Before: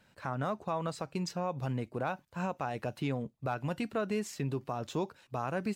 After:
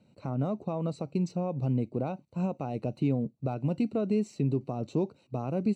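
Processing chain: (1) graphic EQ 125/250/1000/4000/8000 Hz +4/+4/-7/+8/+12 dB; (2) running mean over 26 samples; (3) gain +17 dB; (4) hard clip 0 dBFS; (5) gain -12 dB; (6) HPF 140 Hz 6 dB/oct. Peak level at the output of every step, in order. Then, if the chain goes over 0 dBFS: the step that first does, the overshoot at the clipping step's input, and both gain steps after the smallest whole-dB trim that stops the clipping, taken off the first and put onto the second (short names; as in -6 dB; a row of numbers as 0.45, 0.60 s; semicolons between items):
-18.0, -21.0, -4.0, -4.0, -16.0, -17.0 dBFS; no overload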